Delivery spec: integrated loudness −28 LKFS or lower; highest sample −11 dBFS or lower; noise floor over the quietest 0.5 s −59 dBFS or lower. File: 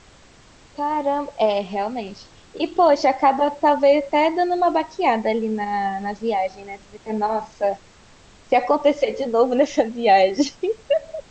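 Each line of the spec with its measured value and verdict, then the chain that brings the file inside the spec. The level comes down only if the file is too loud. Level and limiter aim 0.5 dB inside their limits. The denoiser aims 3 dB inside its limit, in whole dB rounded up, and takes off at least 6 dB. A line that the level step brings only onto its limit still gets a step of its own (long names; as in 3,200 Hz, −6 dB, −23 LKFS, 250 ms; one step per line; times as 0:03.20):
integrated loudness −20.5 LKFS: out of spec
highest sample −5.0 dBFS: out of spec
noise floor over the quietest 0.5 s −49 dBFS: out of spec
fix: broadband denoise 6 dB, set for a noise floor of −49 dBFS
level −8 dB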